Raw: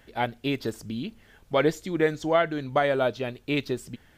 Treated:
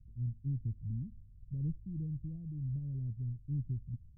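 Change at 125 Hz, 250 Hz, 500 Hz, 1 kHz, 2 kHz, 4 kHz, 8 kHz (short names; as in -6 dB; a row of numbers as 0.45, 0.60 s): +1.0 dB, -13.5 dB, under -40 dB, under -40 dB, under -40 dB, under -40 dB, under -35 dB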